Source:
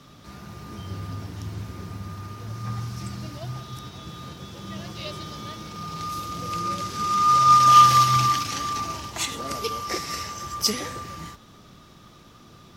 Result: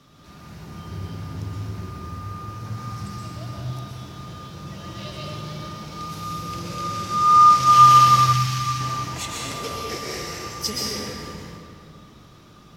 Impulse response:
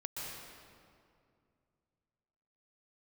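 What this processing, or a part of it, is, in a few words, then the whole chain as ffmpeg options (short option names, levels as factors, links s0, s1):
stairwell: -filter_complex "[1:a]atrim=start_sample=2205[s0];[0:a][s0]afir=irnorm=-1:irlink=0,asettb=1/sr,asplit=3[s1][s2][s3];[s1]atrim=end=8.334[s4];[s2]atrim=start=8.33:end=8.81,asetpts=PTS-STARTPTS,afade=t=in:d=0.004:c=qsin,afade=t=out:st=0.476:d=0.004:c=qsin,equalizer=f=500:w=0.73:g=-10.5[s5];[s3]atrim=start=8.806[s6];[s4][s5]acrossfade=d=0.004:c1=hsin:c2=qsin[s7];[s7][s6]acrossfade=d=0.004:c1=qsin:c2=hsin"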